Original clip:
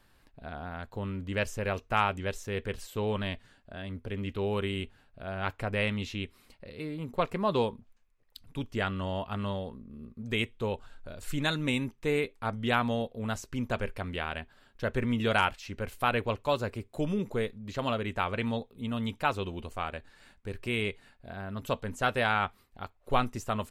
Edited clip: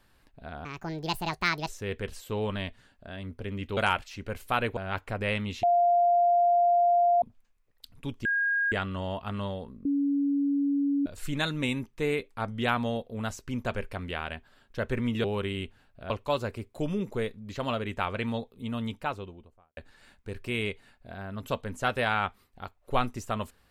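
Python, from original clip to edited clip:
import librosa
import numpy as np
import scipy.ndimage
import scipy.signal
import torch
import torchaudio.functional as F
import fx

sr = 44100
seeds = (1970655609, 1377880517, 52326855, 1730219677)

y = fx.studio_fade_out(x, sr, start_s=18.9, length_s=1.06)
y = fx.edit(y, sr, fx.speed_span(start_s=0.65, length_s=1.69, speed=1.64),
    fx.swap(start_s=4.43, length_s=0.86, other_s=15.29, other_length_s=1.0),
    fx.bleep(start_s=6.15, length_s=1.59, hz=698.0, db=-19.0),
    fx.insert_tone(at_s=8.77, length_s=0.47, hz=1630.0, db=-23.5),
    fx.bleep(start_s=9.9, length_s=1.21, hz=282.0, db=-23.0), tone=tone)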